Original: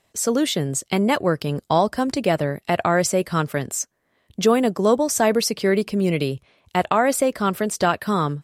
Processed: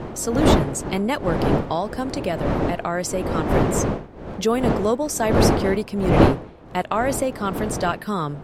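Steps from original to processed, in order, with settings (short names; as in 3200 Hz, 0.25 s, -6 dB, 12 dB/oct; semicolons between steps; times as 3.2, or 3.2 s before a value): wind noise 480 Hz -19 dBFS; 1.63–3.51 compressor 2:1, threshold -17 dBFS, peak gain reduction 5 dB; gain -3.5 dB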